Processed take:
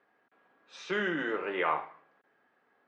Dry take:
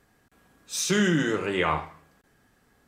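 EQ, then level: band-pass 440–2300 Hz; distance through air 93 m; -2.0 dB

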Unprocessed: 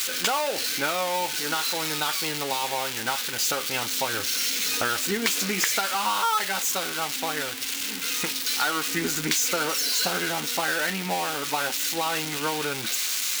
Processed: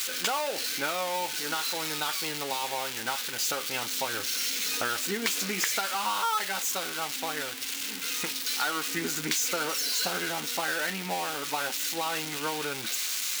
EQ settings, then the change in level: bass shelf 100 Hz -7 dB; -4.0 dB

